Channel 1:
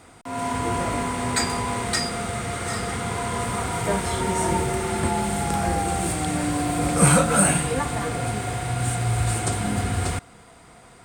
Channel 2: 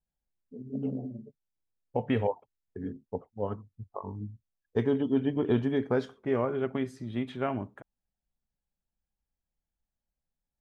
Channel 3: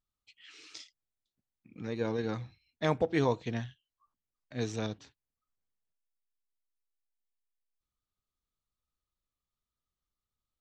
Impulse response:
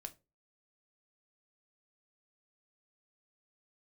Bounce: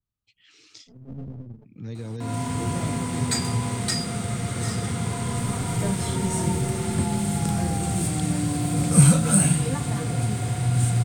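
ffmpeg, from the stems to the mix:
-filter_complex "[0:a]highpass=170,adelay=1950,volume=-0.5dB[link_01];[1:a]aeval=exprs='max(val(0),0)':channel_layout=same,acompressor=threshold=-30dB:ratio=6,adelay=350,volume=-5dB[link_02];[2:a]alimiter=limit=-24dB:level=0:latency=1,adynamicequalizer=threshold=0.00126:dfrequency=3500:dqfactor=0.7:tfrequency=3500:tqfactor=0.7:attack=5:release=100:ratio=0.375:range=3.5:mode=boostabove:tftype=highshelf,volume=-4.5dB,asplit=2[link_03][link_04];[link_04]apad=whole_len=483193[link_05];[link_02][link_05]sidechaincompress=threshold=-56dB:ratio=5:attack=38:release=349[link_06];[link_01][link_06][link_03]amix=inputs=3:normalize=0,equalizer=frequency=110:width=0.48:gain=14,acrossover=split=170|3000[link_07][link_08][link_09];[link_08]acompressor=threshold=-45dB:ratio=1.5[link_10];[link_07][link_10][link_09]amix=inputs=3:normalize=0"

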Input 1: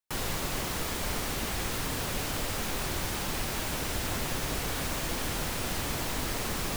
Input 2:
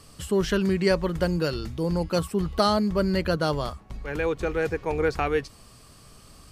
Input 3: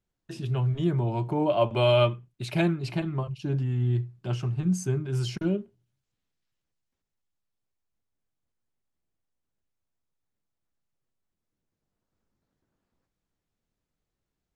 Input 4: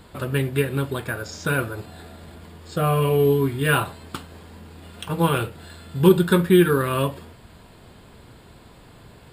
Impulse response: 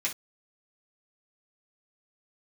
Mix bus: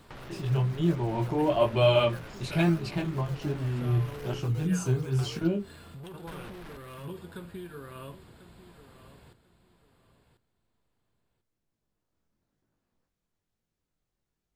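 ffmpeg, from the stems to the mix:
-filter_complex "[0:a]lowpass=2600,volume=-1dB,asplit=3[link_01][link_02][link_03];[link_01]atrim=end=4.4,asetpts=PTS-STARTPTS,afade=type=out:start_time=4.396:duration=0.004:curve=hsin[link_04];[link_02]atrim=start=4.4:end=6.27,asetpts=PTS-STARTPTS,volume=0[link_05];[link_03]atrim=start=6.27,asetpts=PTS-STARTPTS,afade=type=in:duration=0.004:curve=hsin[link_06];[link_04][link_05][link_06]concat=n=3:v=0:a=1[link_07];[1:a]acrusher=samples=9:mix=1:aa=0.000001:lfo=1:lforange=9:lforate=2.7,volume=-9dB[link_08];[2:a]flanger=delay=18:depth=6.3:speed=1.1,volume=2.5dB,asplit=2[link_09][link_10];[3:a]acompressor=threshold=-20dB:ratio=6,volume=-8dB,asplit=2[link_11][link_12];[link_12]volume=-10.5dB[link_13];[link_10]apad=whole_len=411406[link_14];[link_11][link_14]sidechaincompress=threshold=-39dB:ratio=8:attack=16:release=118[link_15];[link_07][link_08][link_15]amix=inputs=3:normalize=0,asoftclip=type=tanh:threshold=-34.5dB,acompressor=threshold=-43dB:ratio=6,volume=0dB[link_16];[link_13]aecho=0:1:1042|2084|3126:1|0.19|0.0361[link_17];[link_09][link_16][link_17]amix=inputs=3:normalize=0"

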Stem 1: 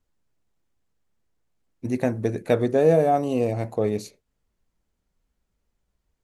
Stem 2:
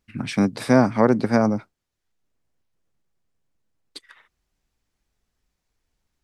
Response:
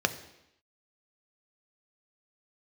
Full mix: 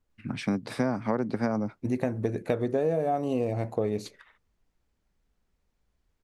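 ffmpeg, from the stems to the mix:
-filter_complex "[0:a]volume=-0.5dB[link_01];[1:a]adelay=100,volume=-4.5dB[link_02];[link_01][link_02]amix=inputs=2:normalize=0,highshelf=frequency=4500:gain=-6.5,acompressor=threshold=-23dB:ratio=6"

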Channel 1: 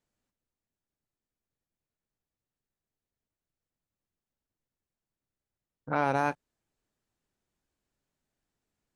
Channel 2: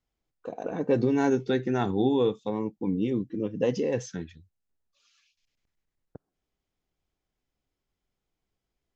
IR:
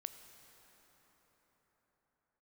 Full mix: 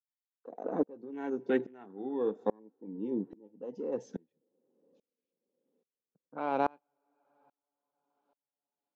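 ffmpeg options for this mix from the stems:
-filter_complex "[0:a]lowpass=frequency=3600:width=0.5412,lowpass=frequency=3600:width=1.3066,equalizer=frequency=1800:width=2.1:gain=-12,adelay=450,volume=2.5dB,asplit=2[link_01][link_02];[link_02]volume=-18.5dB[link_03];[1:a]afwtdn=0.0126,volume=2.5dB,asplit=2[link_04][link_05];[link_05]volume=-18.5dB[link_06];[2:a]atrim=start_sample=2205[link_07];[link_03][link_06]amix=inputs=2:normalize=0[link_08];[link_08][link_07]afir=irnorm=-1:irlink=0[link_09];[link_01][link_04][link_09]amix=inputs=3:normalize=0,highpass=frequency=210:width=0.5412,highpass=frequency=210:width=1.3066,aeval=exprs='val(0)*pow(10,-32*if(lt(mod(-1.2*n/s,1),2*abs(-1.2)/1000),1-mod(-1.2*n/s,1)/(2*abs(-1.2)/1000),(mod(-1.2*n/s,1)-2*abs(-1.2)/1000)/(1-2*abs(-1.2)/1000))/20)':channel_layout=same"

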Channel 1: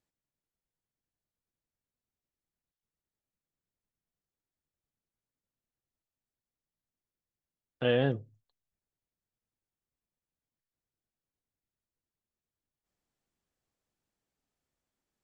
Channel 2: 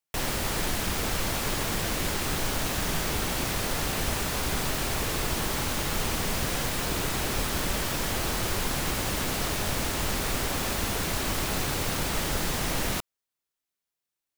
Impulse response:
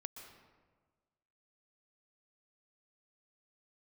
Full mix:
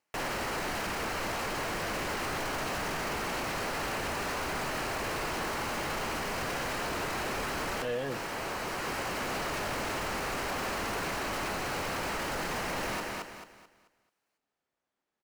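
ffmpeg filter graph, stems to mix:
-filter_complex "[0:a]volume=-9dB,asplit=2[link_01][link_02];[1:a]equalizer=frequency=3500:width=7.6:gain=-9,volume=-3dB,asplit=2[link_03][link_04];[link_04]volume=-13.5dB[link_05];[link_02]apad=whole_len=633982[link_06];[link_03][link_06]sidechaincompress=threshold=-57dB:ratio=8:attack=16:release=805[link_07];[link_05]aecho=0:1:218|436|654|872|1090:1|0.33|0.109|0.0359|0.0119[link_08];[link_01][link_07][link_08]amix=inputs=3:normalize=0,asplit=2[link_09][link_10];[link_10]highpass=frequency=720:poles=1,volume=23dB,asoftclip=type=tanh:threshold=-17dB[link_11];[link_09][link_11]amix=inputs=2:normalize=0,lowpass=frequency=1500:poles=1,volume=-6dB,alimiter=level_in=2.5dB:limit=-24dB:level=0:latency=1:release=10,volume=-2.5dB"

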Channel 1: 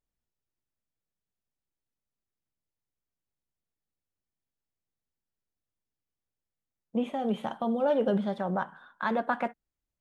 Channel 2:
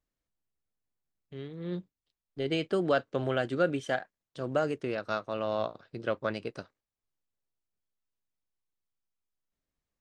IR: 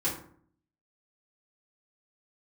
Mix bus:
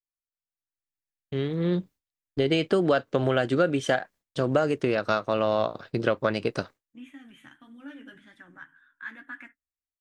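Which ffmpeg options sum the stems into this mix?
-filter_complex "[0:a]firequalizer=gain_entry='entry(130,0);entry(200,-23);entry(280,6);entry(410,-23);entry(720,-23);entry(1700,8);entry(4200,-7);entry(6500,4)':delay=0.05:min_phase=1,flanger=delay=8.7:depth=5.7:regen=-29:speed=1.8:shape=triangular,volume=-16.5dB[link_01];[1:a]agate=range=-33dB:threshold=-52dB:ratio=3:detection=peak,acompressor=threshold=-36dB:ratio=3,volume=2.5dB[link_02];[link_01][link_02]amix=inputs=2:normalize=0,dynaudnorm=framelen=200:gausssize=7:maxgain=11.5dB"

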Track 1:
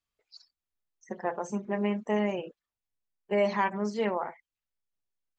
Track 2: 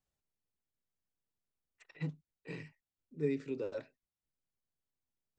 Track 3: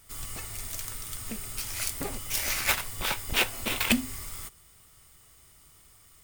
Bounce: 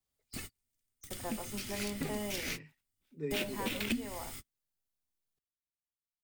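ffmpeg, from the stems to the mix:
ffmpeg -i stem1.wav -i stem2.wav -i stem3.wav -filter_complex "[0:a]adynamicequalizer=threshold=0.00708:dfrequency=1300:dqfactor=0.77:tfrequency=1300:tqfactor=0.77:attack=5:release=100:ratio=0.375:range=2.5:mode=cutabove:tftype=bell,aexciter=amount=3.6:drive=2.6:freq=3600,volume=-9.5dB,asplit=2[link_01][link_02];[1:a]volume=-3dB[link_03];[2:a]equalizer=frequency=250:width_type=o:width=1:gain=8,equalizer=frequency=500:width_type=o:width=1:gain=-5,equalizer=frequency=1000:width_type=o:width=1:gain=-10,volume=-1dB[link_04];[link_02]apad=whole_len=274932[link_05];[link_04][link_05]sidechaingate=range=-49dB:threshold=-58dB:ratio=16:detection=peak[link_06];[link_01][link_03][link_06]amix=inputs=3:normalize=0,acrossover=split=120|500|4600[link_07][link_08][link_09][link_10];[link_07]acompressor=threshold=-49dB:ratio=4[link_11];[link_08]acompressor=threshold=-36dB:ratio=4[link_12];[link_09]acompressor=threshold=-37dB:ratio=4[link_13];[link_10]acompressor=threshold=-46dB:ratio=4[link_14];[link_11][link_12][link_13][link_14]amix=inputs=4:normalize=0" out.wav

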